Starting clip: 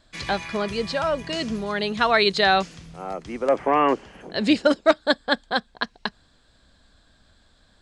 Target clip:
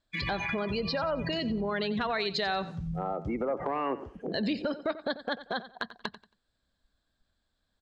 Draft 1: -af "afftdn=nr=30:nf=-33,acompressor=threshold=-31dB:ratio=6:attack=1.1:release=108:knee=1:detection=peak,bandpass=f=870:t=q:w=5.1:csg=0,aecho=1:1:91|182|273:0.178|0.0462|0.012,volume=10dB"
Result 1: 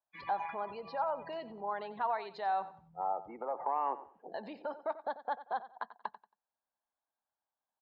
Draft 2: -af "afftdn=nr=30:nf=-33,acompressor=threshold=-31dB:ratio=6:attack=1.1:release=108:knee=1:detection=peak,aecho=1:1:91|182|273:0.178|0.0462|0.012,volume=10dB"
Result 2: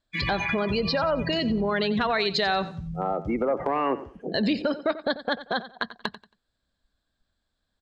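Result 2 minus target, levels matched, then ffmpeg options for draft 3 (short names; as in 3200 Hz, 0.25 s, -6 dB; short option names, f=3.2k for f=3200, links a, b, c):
compressor: peak gain reduction -6 dB
-af "afftdn=nr=30:nf=-33,acompressor=threshold=-38dB:ratio=6:attack=1.1:release=108:knee=1:detection=peak,aecho=1:1:91|182|273:0.178|0.0462|0.012,volume=10dB"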